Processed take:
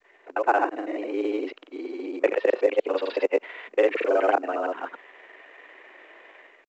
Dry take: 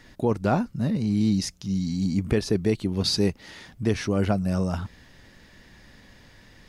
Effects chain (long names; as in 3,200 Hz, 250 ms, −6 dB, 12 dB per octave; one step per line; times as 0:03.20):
reversed piece by piece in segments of 56 ms
automatic gain control gain up to 9 dB
granular cloud, pitch spread up and down by 0 semitones
single-sideband voice off tune +88 Hz 330–2,700 Hz
mu-law 128 kbit/s 16,000 Hz